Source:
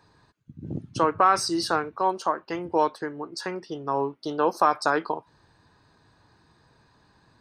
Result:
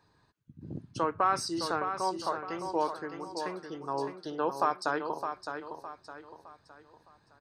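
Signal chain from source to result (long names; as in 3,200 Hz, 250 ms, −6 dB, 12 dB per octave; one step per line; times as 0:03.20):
repeating echo 612 ms, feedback 38%, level −7.5 dB
level −7.5 dB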